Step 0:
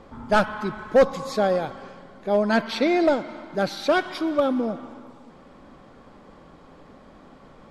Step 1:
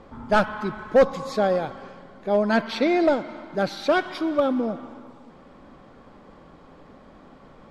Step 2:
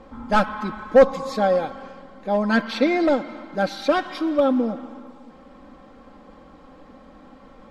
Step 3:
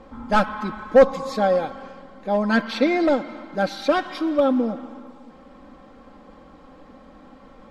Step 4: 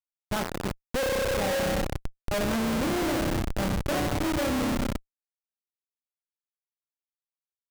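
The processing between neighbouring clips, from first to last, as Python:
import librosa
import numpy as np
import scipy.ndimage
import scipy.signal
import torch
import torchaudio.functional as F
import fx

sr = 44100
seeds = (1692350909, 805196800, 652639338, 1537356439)

y1 = fx.high_shelf(x, sr, hz=6200.0, db=-6.0)
y2 = y1 + 0.57 * np.pad(y1, (int(3.8 * sr / 1000.0), 0))[:len(y1)]
y3 = y2
y4 = fx.rev_spring(y3, sr, rt60_s=2.1, pass_ms=(31,), chirp_ms=55, drr_db=0.0)
y4 = fx.schmitt(y4, sr, flips_db=-19.0)
y4 = y4 * librosa.db_to_amplitude(-7.0)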